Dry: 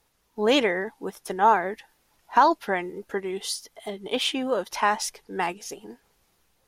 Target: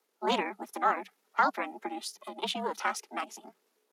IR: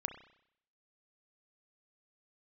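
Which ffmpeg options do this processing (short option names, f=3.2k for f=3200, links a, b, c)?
-af "aeval=exprs='val(0)*sin(2*PI*240*n/s)':c=same,afreqshift=190,atempo=1.7,volume=-4dB"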